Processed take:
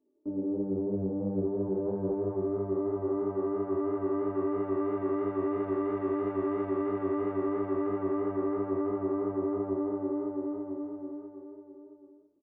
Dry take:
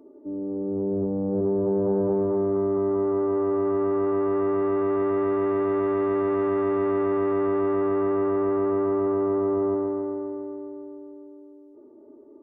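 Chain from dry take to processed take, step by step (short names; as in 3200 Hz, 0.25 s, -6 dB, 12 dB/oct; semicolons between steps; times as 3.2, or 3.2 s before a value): gate -42 dBFS, range -25 dB; low shelf 440 Hz +4.5 dB; compressor, threshold -25 dBFS, peak gain reduction 8.5 dB; chorus 3 Hz, delay 19 ms, depth 4.8 ms; on a send: echo 0.984 s -11.5 dB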